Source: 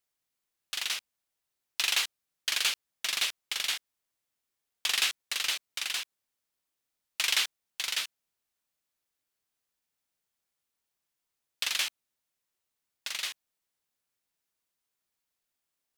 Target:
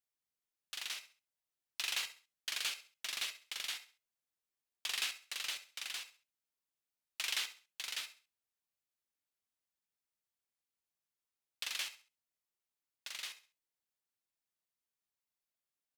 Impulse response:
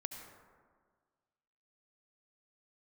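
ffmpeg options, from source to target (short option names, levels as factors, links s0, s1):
-filter_complex "[0:a]aecho=1:1:67|134|201:0.188|0.0603|0.0193[s0];[1:a]atrim=start_sample=2205,atrim=end_sample=3087[s1];[s0][s1]afir=irnorm=-1:irlink=0,volume=0.473"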